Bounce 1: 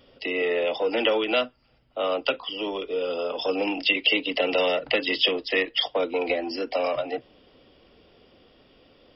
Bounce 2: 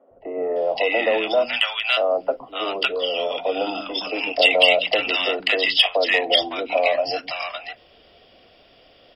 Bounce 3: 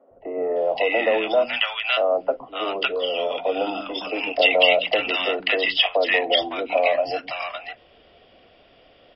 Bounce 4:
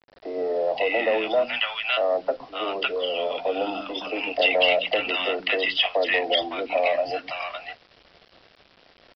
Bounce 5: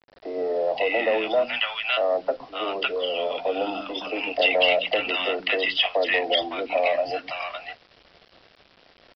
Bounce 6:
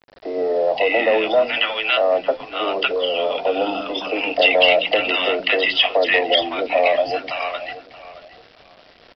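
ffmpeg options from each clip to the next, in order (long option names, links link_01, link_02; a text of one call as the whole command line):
ffmpeg -i in.wav -filter_complex "[0:a]equalizer=frequency=680:width_type=o:width=0.42:gain=11.5,acrossover=split=1100[link_01][link_02];[link_02]acontrast=76[link_03];[link_01][link_03]amix=inputs=2:normalize=0,acrossover=split=240|1000[link_04][link_05][link_06];[link_04]adelay=110[link_07];[link_06]adelay=560[link_08];[link_07][link_05][link_08]amix=inputs=3:normalize=0" out.wav
ffmpeg -i in.wav -af "lowpass=3200" out.wav
ffmpeg -i in.wav -af "acontrast=72,aresample=11025,acrusher=bits=6:mix=0:aa=0.000001,aresample=44100,volume=-8.5dB" out.wav
ffmpeg -i in.wav -af anull out.wav
ffmpeg -i in.wav -filter_complex "[0:a]asplit=2[link_01][link_02];[link_02]adelay=626,lowpass=frequency=2100:poles=1,volume=-14.5dB,asplit=2[link_03][link_04];[link_04]adelay=626,lowpass=frequency=2100:poles=1,volume=0.28,asplit=2[link_05][link_06];[link_06]adelay=626,lowpass=frequency=2100:poles=1,volume=0.28[link_07];[link_01][link_03][link_05][link_07]amix=inputs=4:normalize=0,volume=5.5dB" out.wav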